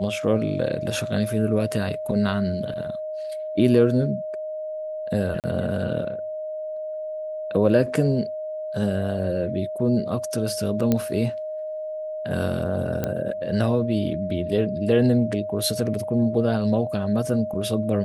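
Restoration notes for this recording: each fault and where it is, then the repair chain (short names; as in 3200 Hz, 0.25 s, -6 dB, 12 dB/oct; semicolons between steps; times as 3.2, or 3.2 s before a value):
tone 620 Hz -28 dBFS
5.4–5.44 gap 38 ms
10.92 pop -8 dBFS
13.04 pop -11 dBFS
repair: de-click; notch 620 Hz, Q 30; interpolate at 5.4, 38 ms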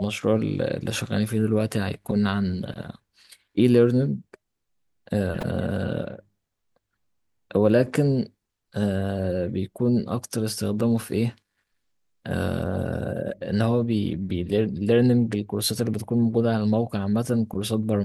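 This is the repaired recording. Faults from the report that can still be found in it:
none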